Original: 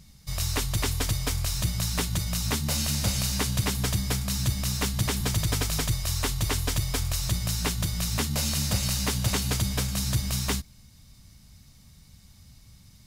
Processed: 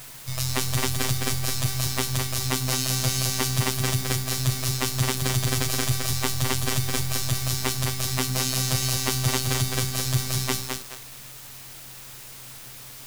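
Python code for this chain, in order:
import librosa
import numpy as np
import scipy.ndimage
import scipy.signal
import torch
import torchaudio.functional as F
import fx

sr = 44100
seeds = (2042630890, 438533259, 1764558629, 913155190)

p1 = fx.robotise(x, sr, hz=129.0)
p2 = fx.quant_dither(p1, sr, seeds[0], bits=6, dither='triangular')
p3 = p1 + (p2 * 10.0 ** (-7.5 / 20.0))
p4 = fx.echo_crushed(p3, sr, ms=212, feedback_pct=35, bits=6, wet_db=-4.0)
y = p4 * 10.0 ** (1.0 / 20.0)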